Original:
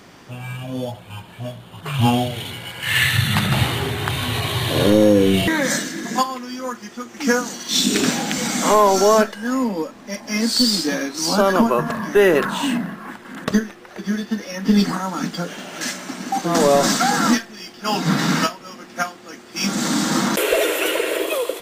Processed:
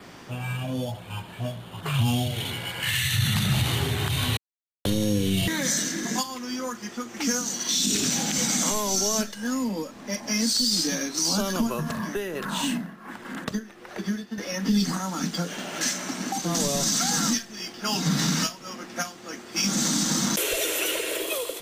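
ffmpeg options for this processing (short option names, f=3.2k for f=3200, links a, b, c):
-filter_complex "[0:a]asettb=1/sr,asplit=3[a][b][c];[a]atrim=end=11.964[d];[b]atrim=start=11.96:end=14.38,asetpts=PTS-STARTPTS,afade=t=in:d=0.004:c=qsin,afade=t=out:st=2.416:d=0.004:c=qsin,tremolo=f=1.5:d=0.74[e];[c]atrim=start=14.376[f];[d][e]acrossfade=d=0.004:c1=hsin:c2=qsin[g];[g][f]acrossfade=d=0.004:c1=qsin:c2=hsin,asplit=3[h][i][j];[h]atrim=end=4.37,asetpts=PTS-STARTPTS,afade=t=out:st=4.366:d=0.004:c=hsin[k];[i]atrim=start=4.37:end=4.85,asetpts=PTS-STARTPTS,volume=0[l];[j]atrim=start=4.85,asetpts=PTS-STARTPTS,afade=t=in:d=0.004:c=hsin[m];[k][l][m]concat=n=3:v=0:a=1,adynamicequalizer=threshold=0.00891:dfrequency=6100:dqfactor=5.6:tfrequency=6100:tqfactor=5.6:attack=5:release=100:ratio=0.375:range=3:mode=boostabove:tftype=bell,acrossover=split=190|3000[n][o][p];[o]acompressor=threshold=-30dB:ratio=5[q];[n][q][p]amix=inputs=3:normalize=0,alimiter=limit=-14dB:level=0:latency=1:release=45"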